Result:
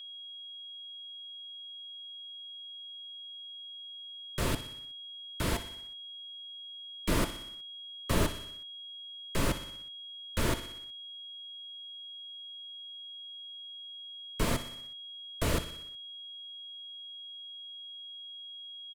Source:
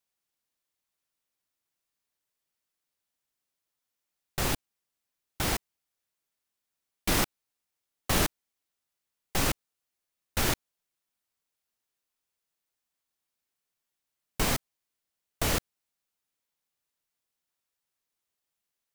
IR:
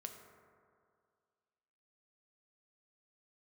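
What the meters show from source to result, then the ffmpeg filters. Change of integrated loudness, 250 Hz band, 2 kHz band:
-8.0 dB, 0.0 dB, -4.5 dB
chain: -filter_complex "[0:a]lowpass=12000,asplit=2[s0][s1];[s1]aecho=0:1:61|122|183|244|305|366:0.178|0.105|0.0619|0.0365|0.0215|0.0127[s2];[s0][s2]amix=inputs=2:normalize=0,aeval=exprs='val(0)+0.00794*sin(2*PI*3300*n/s)':c=same,asuperstop=centerf=780:order=20:qfactor=5.5,equalizer=f=5800:t=o:w=0.48:g=-4.5,acrossover=split=210|1100[s3][s4][s5];[s5]asoftclip=type=tanh:threshold=0.0211[s6];[s3][s4][s6]amix=inputs=3:normalize=0"

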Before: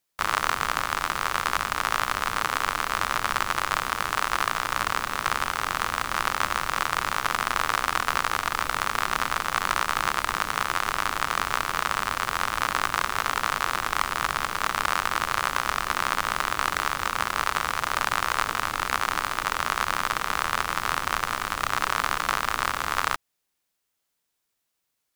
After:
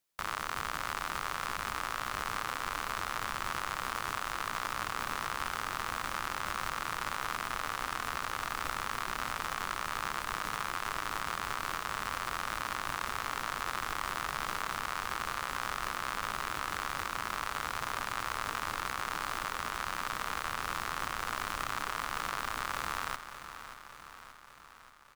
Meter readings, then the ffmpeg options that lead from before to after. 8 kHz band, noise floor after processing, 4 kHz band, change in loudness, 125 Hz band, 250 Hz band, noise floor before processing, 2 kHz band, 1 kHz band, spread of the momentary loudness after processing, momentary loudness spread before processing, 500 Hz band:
-9.0 dB, -51 dBFS, -9.5 dB, -9.5 dB, -7.5 dB, -7.5 dB, -79 dBFS, -10.0 dB, -9.5 dB, 1 LU, 2 LU, -9.0 dB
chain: -filter_complex "[0:a]alimiter=limit=0.178:level=0:latency=1:release=36,asplit=2[s0][s1];[s1]aecho=0:1:579|1158|1737|2316|2895|3474|4053:0.266|0.16|0.0958|0.0575|0.0345|0.0207|0.0124[s2];[s0][s2]amix=inputs=2:normalize=0,volume=0.631"

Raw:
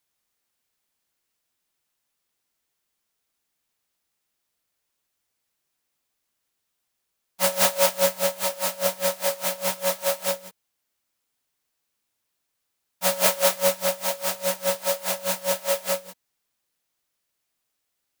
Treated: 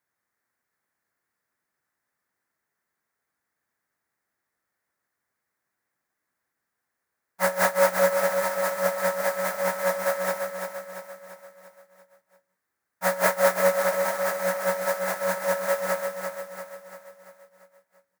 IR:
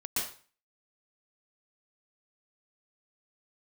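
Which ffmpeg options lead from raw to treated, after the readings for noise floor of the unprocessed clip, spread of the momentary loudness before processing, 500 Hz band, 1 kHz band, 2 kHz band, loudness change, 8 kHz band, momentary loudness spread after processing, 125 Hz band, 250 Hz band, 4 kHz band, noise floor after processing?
-79 dBFS, 6 LU, +2.0 dB, +3.0 dB, +4.5 dB, -1.5 dB, -7.5 dB, 17 LU, no reading, +1.0 dB, -10.0 dB, -83 dBFS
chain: -filter_complex "[0:a]highpass=77,highshelf=f=2300:t=q:w=3:g=-8,asplit=2[s0][s1];[s1]aecho=0:1:342|684|1026|1368|1710|2052:0.501|0.256|0.13|0.0665|0.0339|0.0173[s2];[s0][s2]amix=inputs=2:normalize=0"

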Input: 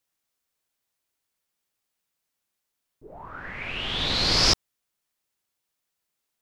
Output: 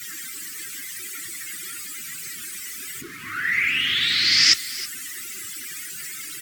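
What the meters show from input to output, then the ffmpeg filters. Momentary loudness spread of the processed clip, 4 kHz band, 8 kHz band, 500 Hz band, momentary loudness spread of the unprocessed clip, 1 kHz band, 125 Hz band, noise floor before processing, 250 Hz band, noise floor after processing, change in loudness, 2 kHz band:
16 LU, +5.0 dB, +8.5 dB, -12.5 dB, 19 LU, -3.5 dB, -9.5 dB, -82 dBFS, -5.0 dB, -36 dBFS, -0.5 dB, +11.0 dB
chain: -filter_complex "[0:a]aeval=exprs='val(0)+0.5*0.0668*sgn(val(0))':c=same,highpass=f=95:w=0.5412,highpass=f=95:w=1.3066,afftdn=nr=34:nf=-33,equalizer=f=500:t=o:w=0.33:g=-5,equalizer=f=800:t=o:w=0.33:g=-3,equalizer=f=2000:t=o:w=0.33:g=9,equalizer=f=4000:t=o:w=0.33:g=-3,equalizer=f=8000:t=o:w=0.33:g=7,acrossover=split=1400[s0][s1];[s0]acompressor=threshold=0.01:ratio=10[s2];[s2][s1]amix=inputs=2:normalize=0,flanger=delay=2.1:depth=1.8:regen=56:speed=1.7:shape=sinusoidal,acrusher=bits=7:mix=0:aa=0.000001,asuperstop=centerf=700:order=8:qfactor=0.79,asplit=2[s3][s4];[s4]aecho=0:1:321:0.141[s5];[s3][s5]amix=inputs=2:normalize=0,volume=2.37" -ar 44100 -c:a aac -b:a 96k

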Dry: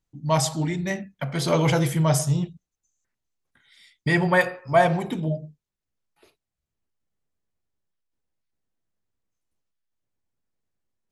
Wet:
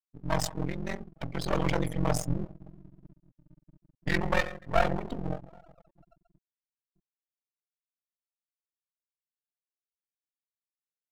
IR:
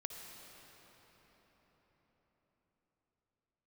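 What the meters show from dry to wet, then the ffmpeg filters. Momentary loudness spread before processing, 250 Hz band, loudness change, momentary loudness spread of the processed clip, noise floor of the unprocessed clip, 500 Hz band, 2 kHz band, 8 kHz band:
11 LU, -8.5 dB, -8.5 dB, 11 LU, -85 dBFS, -8.5 dB, -8.0 dB, -10.0 dB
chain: -filter_complex "[0:a]asplit=2[s0][s1];[1:a]atrim=start_sample=2205,lowpass=7700[s2];[s1][s2]afir=irnorm=-1:irlink=0,volume=0.251[s3];[s0][s3]amix=inputs=2:normalize=0,aeval=exprs='val(0)*sin(2*PI*22*n/s)':c=same,afftfilt=real='re*gte(hypot(re,im),0.0282)':imag='im*gte(hypot(re,im),0.0282)':win_size=1024:overlap=0.75,aeval=exprs='max(val(0),0)':c=same,volume=0.794"

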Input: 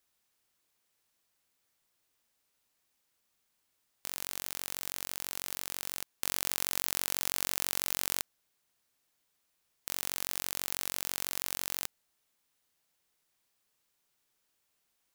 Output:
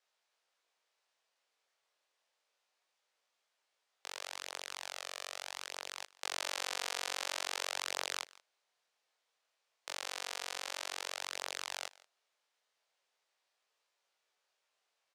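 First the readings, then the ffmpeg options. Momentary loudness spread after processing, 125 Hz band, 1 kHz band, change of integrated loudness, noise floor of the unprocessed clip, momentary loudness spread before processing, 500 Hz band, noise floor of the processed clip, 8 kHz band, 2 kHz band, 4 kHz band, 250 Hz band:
8 LU, under -20 dB, +2.0 dB, -6.5 dB, -78 dBFS, 8 LU, +1.0 dB, -84 dBFS, -7.5 dB, +0.5 dB, -1.0 dB, -12.0 dB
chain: -af "highpass=160,lowpass=5500,flanger=delay=17.5:depth=5.9:speed=0.29,lowshelf=f=360:t=q:w=1.5:g=-13.5,aecho=1:1:167:0.0794,volume=1.41"

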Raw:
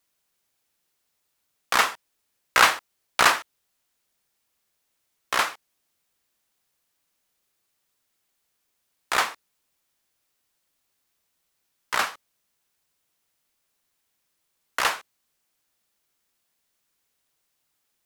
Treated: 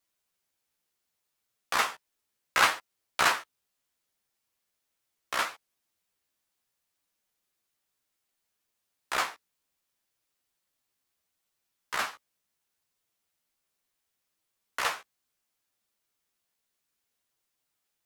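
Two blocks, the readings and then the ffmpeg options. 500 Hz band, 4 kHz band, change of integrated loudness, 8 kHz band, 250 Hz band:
-6.0 dB, -6.0 dB, -6.0 dB, -6.5 dB, -6.0 dB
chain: -af "flanger=delay=8.7:depth=7.4:regen=-6:speed=0.69:shape=sinusoidal,volume=0.708"

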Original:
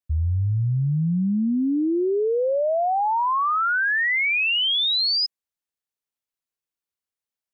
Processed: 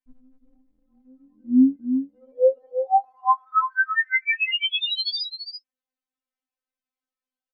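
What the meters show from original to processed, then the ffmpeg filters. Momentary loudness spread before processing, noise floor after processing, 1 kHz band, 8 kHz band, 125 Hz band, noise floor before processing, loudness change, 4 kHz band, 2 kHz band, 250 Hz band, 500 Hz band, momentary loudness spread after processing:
5 LU, under -85 dBFS, -0.5 dB, no reading, under -30 dB, under -85 dBFS, -1.0 dB, -4.5 dB, -2.0 dB, +0.5 dB, -2.0 dB, 11 LU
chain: -af "lowpass=f=1600:p=1,acompressor=threshold=0.0631:ratio=6,aecho=1:1:337:0.398,afftfilt=real='re*3.46*eq(mod(b,12),0)':imag='im*3.46*eq(mod(b,12),0)':win_size=2048:overlap=0.75,volume=1.78"

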